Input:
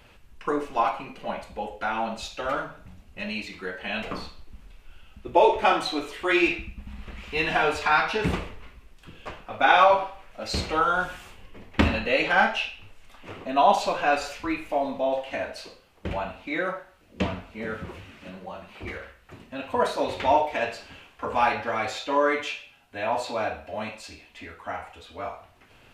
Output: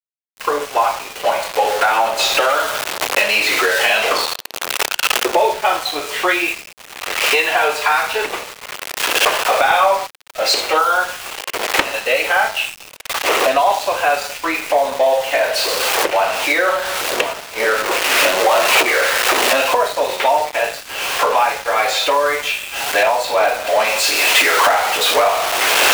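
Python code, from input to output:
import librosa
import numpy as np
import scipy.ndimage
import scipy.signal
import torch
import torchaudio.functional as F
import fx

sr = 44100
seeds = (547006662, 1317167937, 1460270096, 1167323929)

y = x + 0.5 * 10.0 ** (-31.5 / 20.0) * np.sign(x)
y = fx.recorder_agc(y, sr, target_db=-9.0, rise_db_per_s=20.0, max_gain_db=30)
y = np.where(np.abs(y) >= 10.0 ** (-25.5 / 20.0), y, 0.0)
y = scipy.signal.sosfilt(scipy.signal.butter(4, 430.0, 'highpass', fs=sr, output='sos'), y)
y = fx.leveller(y, sr, passes=3)
y = fx.band_squash(y, sr, depth_pct=70, at=(2.19, 4.25))
y = F.gain(torch.from_numpy(y), -8.0).numpy()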